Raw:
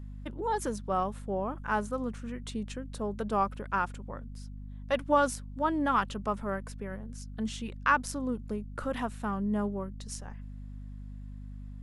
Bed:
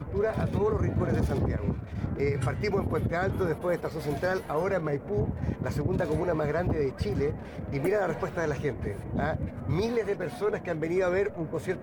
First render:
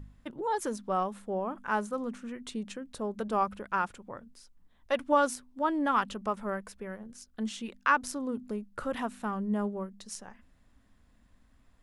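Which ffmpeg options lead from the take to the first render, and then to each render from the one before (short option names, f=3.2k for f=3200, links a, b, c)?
-af "bandreject=f=50:t=h:w=4,bandreject=f=100:t=h:w=4,bandreject=f=150:t=h:w=4,bandreject=f=200:t=h:w=4,bandreject=f=250:t=h:w=4"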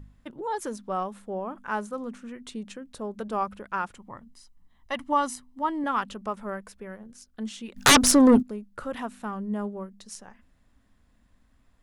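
-filter_complex "[0:a]asettb=1/sr,asplit=3[a][b][c];[a]atrim=end=3.954[d];[b]atrim=start=3.95:end=5.84,asetpts=PTS-STARTPTS,afade=t=in:d=0.004:c=qsin,afade=t=out:st=1.886:d=0.004:c=qsin,aecho=1:1:1:0.55,atrim=end_sample=83349[e];[c]atrim=start=5.836[f];[d][e]acrossfade=d=0.004:c1=hsin:c2=qsin[g];[g][f]acrossfade=d=0.004:c1=qsin:c2=hsin,asplit=3[h][i][j];[h]afade=t=out:st=7.76:d=0.02[k];[i]aeval=exprs='0.282*sin(PI/2*7.08*val(0)/0.282)':c=same,afade=t=in:st=7.76:d=0.02,afade=t=out:st=8.41:d=0.02[l];[j]afade=t=in:st=8.41:d=0.02[m];[k][l][m]amix=inputs=3:normalize=0"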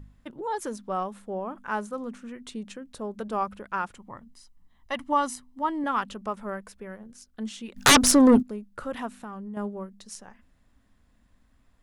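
-filter_complex "[0:a]asettb=1/sr,asplit=3[a][b][c];[a]atrim=end=9.144[d];[b]atrim=start=9.14:end=9.57,asetpts=PTS-STARTPTS,afade=t=in:d=0.004:c=qsin,afade=t=out:st=0.426:d=0.004:c=qsin,acompressor=threshold=-35dB:ratio=6:attack=3.2:release=140:knee=1:detection=peak[e];[c]atrim=start=9.566[f];[d][e]acrossfade=d=0.004:c1=hsin:c2=qsin[g];[g][f]acrossfade=d=0.004:c1=qsin:c2=hsin"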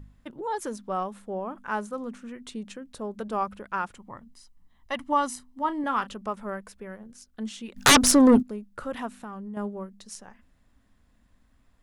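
-filter_complex "[0:a]asettb=1/sr,asplit=3[a][b][c];[a]atrim=end=5.304[d];[b]atrim=start=5.3:end=6.13,asetpts=PTS-STARTPTS,afade=t=in:d=0.004:c=qsin,afade=t=out:st=0.826:d=0.004:c=qsin,asplit=2[e][f];[f]adelay=33,volume=-14dB[g];[e][g]amix=inputs=2:normalize=0,atrim=end_sample=36603[h];[c]atrim=start=6.126[i];[d][h]acrossfade=d=0.004:c1=hsin:c2=qsin[j];[j][i]acrossfade=d=0.004:c1=qsin:c2=hsin"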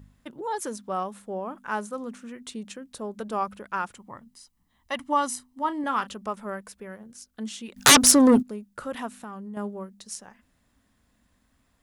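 -af "highpass=f=80:p=1,highshelf=f=4.8k:g=6.5"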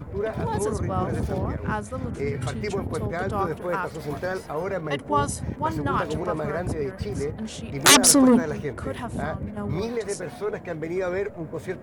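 -filter_complex "[1:a]volume=-0.5dB[a];[0:a][a]amix=inputs=2:normalize=0"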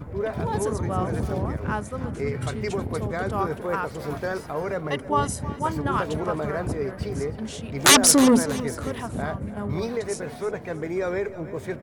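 -af "aecho=1:1:317|634|951:0.168|0.0588|0.0206"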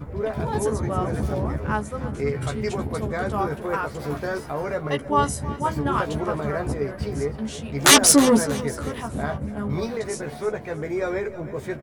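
-filter_complex "[0:a]asplit=2[a][b];[b]adelay=14,volume=-5dB[c];[a][c]amix=inputs=2:normalize=0,asplit=2[d][e];[e]adelay=1399,volume=-28dB,highshelf=f=4k:g=-31.5[f];[d][f]amix=inputs=2:normalize=0"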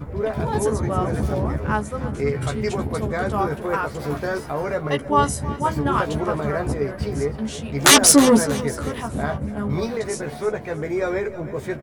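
-af "volume=2.5dB,alimiter=limit=-1dB:level=0:latency=1"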